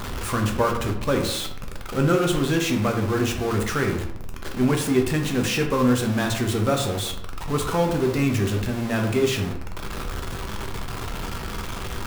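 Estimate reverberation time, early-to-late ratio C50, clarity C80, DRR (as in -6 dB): 0.75 s, 7.5 dB, 10.5 dB, 2.0 dB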